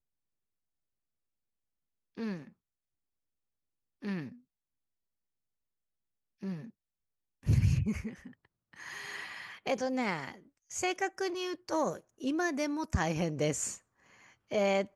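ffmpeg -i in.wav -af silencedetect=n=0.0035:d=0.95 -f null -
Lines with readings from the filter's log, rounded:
silence_start: 0.00
silence_end: 2.17 | silence_duration: 2.17
silence_start: 2.49
silence_end: 4.02 | silence_duration: 1.53
silence_start: 4.35
silence_end: 6.42 | silence_duration: 2.07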